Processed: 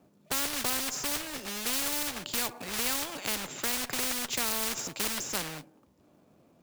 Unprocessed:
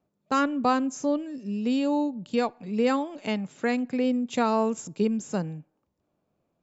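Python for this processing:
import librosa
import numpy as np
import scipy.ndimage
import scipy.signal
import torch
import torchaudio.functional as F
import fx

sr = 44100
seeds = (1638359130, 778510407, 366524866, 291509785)

y = fx.highpass(x, sr, hz=61.0, slope=6)
y = fx.peak_eq(y, sr, hz=260.0, db=4.5, octaves=0.69)
y = fx.cheby_harmonics(y, sr, harmonics=(2, 4, 6, 8), levels_db=(-29, -29, -26, -30), full_scale_db=-9.0)
y = fx.quant_float(y, sr, bits=2)
y = fx.spectral_comp(y, sr, ratio=4.0)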